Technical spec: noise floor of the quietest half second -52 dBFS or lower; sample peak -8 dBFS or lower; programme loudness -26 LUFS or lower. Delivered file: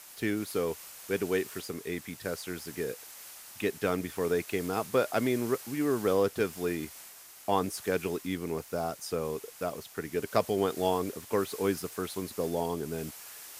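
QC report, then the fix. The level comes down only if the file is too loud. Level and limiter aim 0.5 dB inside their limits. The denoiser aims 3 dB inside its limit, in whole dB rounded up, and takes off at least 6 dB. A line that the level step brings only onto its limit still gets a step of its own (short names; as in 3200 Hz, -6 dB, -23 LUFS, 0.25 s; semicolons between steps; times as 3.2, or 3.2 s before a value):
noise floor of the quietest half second -50 dBFS: fail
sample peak -10.5 dBFS: OK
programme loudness -32.0 LUFS: OK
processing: denoiser 6 dB, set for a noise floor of -50 dBFS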